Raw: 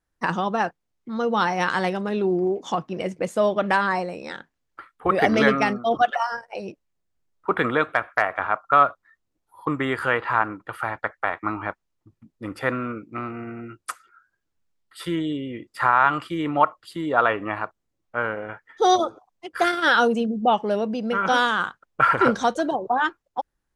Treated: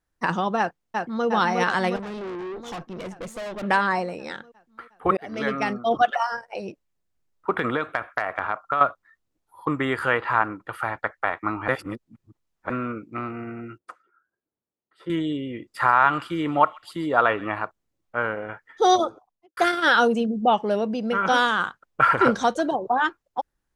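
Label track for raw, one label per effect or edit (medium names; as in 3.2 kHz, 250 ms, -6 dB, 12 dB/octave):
0.580000	1.270000	echo throw 360 ms, feedback 70%, level -3.5 dB
1.960000	3.630000	valve stage drive 31 dB, bias 0.6
5.170000	5.920000	fade in
7.500000	8.810000	compression, threshold -19 dBFS
11.680000	12.700000	reverse
13.780000	15.100000	band-pass filter 400 Hz, Q 0.94
15.730000	17.560000	feedback echo behind a high-pass 133 ms, feedback 34%, high-pass 2.6 kHz, level -13 dB
19.040000	19.570000	studio fade out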